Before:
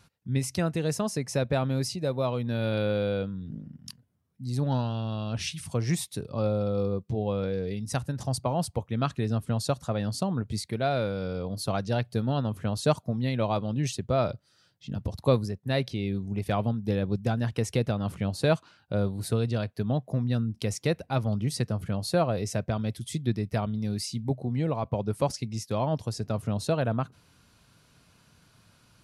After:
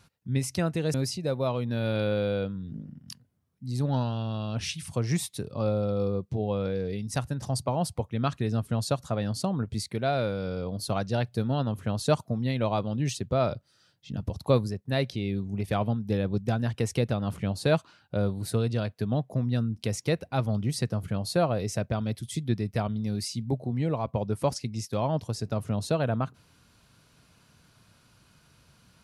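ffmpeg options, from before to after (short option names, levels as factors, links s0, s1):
-filter_complex "[0:a]asplit=2[s0][s1];[s0]atrim=end=0.942[s2];[s1]atrim=start=1.718[s3];[s2][s3]acrossfade=d=0.004:c1=hsin:c2=hsin"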